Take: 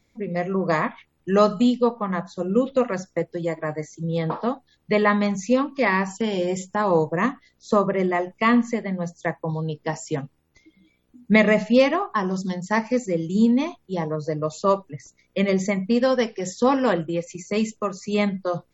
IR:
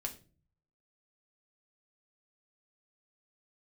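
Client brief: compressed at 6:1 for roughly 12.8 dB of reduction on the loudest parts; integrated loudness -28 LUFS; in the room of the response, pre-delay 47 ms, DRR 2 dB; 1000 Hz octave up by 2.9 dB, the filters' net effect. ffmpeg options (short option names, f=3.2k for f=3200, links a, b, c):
-filter_complex "[0:a]equalizer=f=1k:t=o:g=3.5,acompressor=threshold=-26dB:ratio=6,asplit=2[a][b];[1:a]atrim=start_sample=2205,adelay=47[c];[b][c]afir=irnorm=-1:irlink=0,volume=-1.5dB[d];[a][d]amix=inputs=2:normalize=0,volume=1dB"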